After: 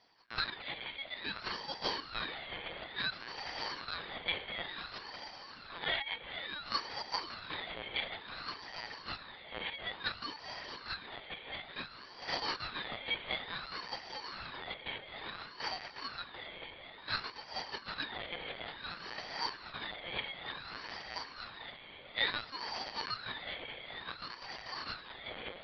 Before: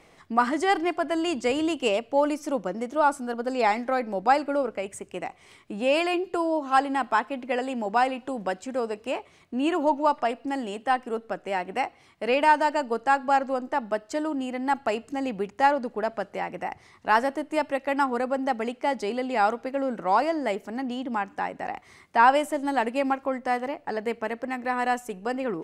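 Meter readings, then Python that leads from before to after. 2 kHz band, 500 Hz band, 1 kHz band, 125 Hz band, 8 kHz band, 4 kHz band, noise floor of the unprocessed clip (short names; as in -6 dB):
-9.0 dB, -22.5 dB, -19.5 dB, n/a, -16.0 dB, +1.5 dB, -56 dBFS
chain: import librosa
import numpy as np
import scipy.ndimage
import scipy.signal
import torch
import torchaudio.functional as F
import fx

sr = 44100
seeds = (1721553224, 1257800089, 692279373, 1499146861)

y = fx.bit_reversed(x, sr, seeds[0], block=128)
y = fx.low_shelf(y, sr, hz=290.0, db=-10.5)
y = fx.echo_diffused(y, sr, ms=461, feedback_pct=69, wet_db=-9)
y = fx.lpc_vocoder(y, sr, seeds[1], excitation='pitch_kept', order=16)
y = fx.ring_lfo(y, sr, carrier_hz=1200.0, swing_pct=60, hz=0.57)
y = y * 10.0 ** (1.0 / 20.0)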